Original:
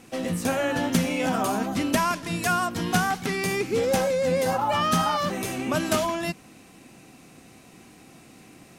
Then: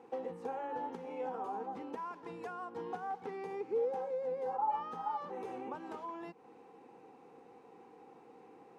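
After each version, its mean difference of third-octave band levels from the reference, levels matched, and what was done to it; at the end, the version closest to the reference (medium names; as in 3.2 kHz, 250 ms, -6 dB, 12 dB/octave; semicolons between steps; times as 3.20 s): 11.5 dB: compression 10:1, threshold -32 dBFS, peak gain reduction 15 dB; two resonant band-passes 630 Hz, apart 0.81 oct; trim +5 dB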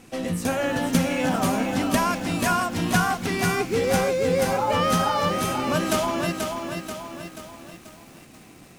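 4.0 dB: bass shelf 69 Hz +8 dB; bit-crushed delay 484 ms, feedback 55%, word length 8-bit, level -5 dB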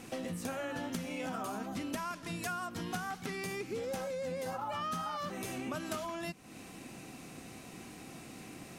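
5.0 dB: dynamic bell 1.3 kHz, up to +5 dB, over -40 dBFS, Q 5.1; compression 4:1, threshold -40 dBFS, peak gain reduction 19 dB; trim +1 dB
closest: second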